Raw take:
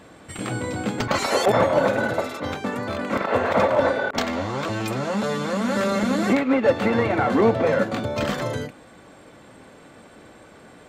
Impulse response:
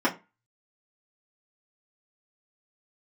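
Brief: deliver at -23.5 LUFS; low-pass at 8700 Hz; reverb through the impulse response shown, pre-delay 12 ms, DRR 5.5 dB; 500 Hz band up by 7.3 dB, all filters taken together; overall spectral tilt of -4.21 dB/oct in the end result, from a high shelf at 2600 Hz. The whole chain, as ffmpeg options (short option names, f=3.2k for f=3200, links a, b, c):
-filter_complex "[0:a]lowpass=8.7k,equalizer=f=500:t=o:g=8,highshelf=f=2.6k:g=8,asplit=2[a][b];[1:a]atrim=start_sample=2205,adelay=12[c];[b][c]afir=irnorm=-1:irlink=0,volume=-19.5dB[d];[a][d]amix=inputs=2:normalize=0,volume=-8dB"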